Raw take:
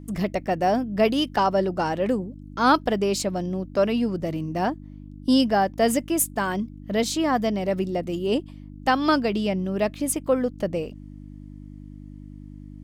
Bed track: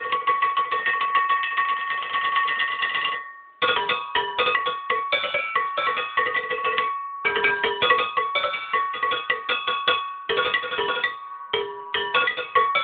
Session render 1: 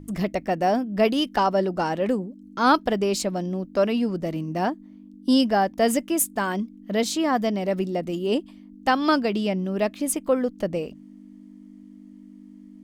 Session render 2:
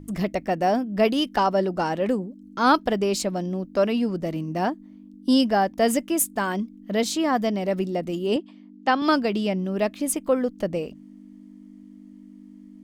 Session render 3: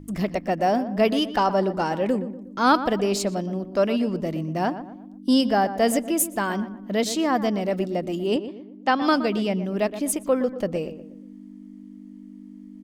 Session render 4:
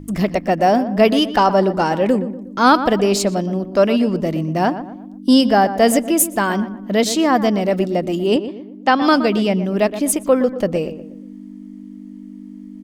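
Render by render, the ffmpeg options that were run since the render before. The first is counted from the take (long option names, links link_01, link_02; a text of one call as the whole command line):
ffmpeg -i in.wav -af "bandreject=frequency=50:width_type=h:width=4,bandreject=frequency=100:width_type=h:width=4,bandreject=frequency=150:width_type=h:width=4" out.wav
ffmpeg -i in.wav -filter_complex "[0:a]asettb=1/sr,asplit=3[link_01][link_02][link_03];[link_01]atrim=end=8.364[link_04];[link_02]atrim=start=8.36:end=9.02,asetpts=PTS-STARTPTS,afade=type=in:duration=0.004:curve=qsin,afade=type=out:start_time=0.656:duration=0.004:curve=qsin,highpass=180,lowpass=4800[link_05];[link_03]atrim=start=9.016[link_06];[link_04][link_05]acrossfade=duration=0.004:curve1=hsin:curve2=qsin[link_07];[link_07][link_06]acrossfade=duration=0.004:curve1=qsin:curve2=hsin" out.wav
ffmpeg -i in.wav -filter_complex "[0:a]asplit=2[link_01][link_02];[link_02]adelay=120,lowpass=frequency=1700:poles=1,volume=-11.5dB,asplit=2[link_03][link_04];[link_04]adelay=120,lowpass=frequency=1700:poles=1,volume=0.42,asplit=2[link_05][link_06];[link_06]adelay=120,lowpass=frequency=1700:poles=1,volume=0.42,asplit=2[link_07][link_08];[link_08]adelay=120,lowpass=frequency=1700:poles=1,volume=0.42[link_09];[link_01][link_03][link_05][link_07][link_09]amix=inputs=5:normalize=0" out.wav
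ffmpeg -i in.wav -af "volume=7dB,alimiter=limit=-2dB:level=0:latency=1" out.wav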